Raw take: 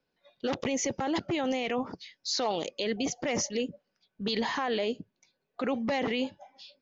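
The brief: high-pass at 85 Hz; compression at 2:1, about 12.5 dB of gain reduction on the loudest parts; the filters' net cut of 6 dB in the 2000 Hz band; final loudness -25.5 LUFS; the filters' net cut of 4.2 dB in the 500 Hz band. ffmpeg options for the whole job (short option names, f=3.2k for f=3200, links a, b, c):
-af "highpass=85,equalizer=f=500:t=o:g=-4.5,equalizer=f=2k:t=o:g=-7,acompressor=threshold=-52dB:ratio=2,volume=20.5dB"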